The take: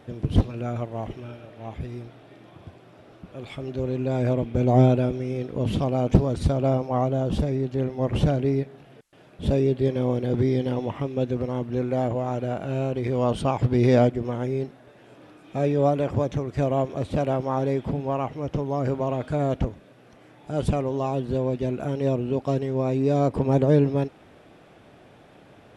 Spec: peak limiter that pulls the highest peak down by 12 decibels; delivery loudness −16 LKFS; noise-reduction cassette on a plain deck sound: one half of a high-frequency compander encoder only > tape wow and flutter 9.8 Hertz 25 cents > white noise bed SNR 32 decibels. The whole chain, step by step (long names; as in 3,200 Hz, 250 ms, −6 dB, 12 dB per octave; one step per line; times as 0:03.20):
brickwall limiter −16.5 dBFS
one half of a high-frequency compander encoder only
tape wow and flutter 9.8 Hz 25 cents
white noise bed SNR 32 dB
level +11 dB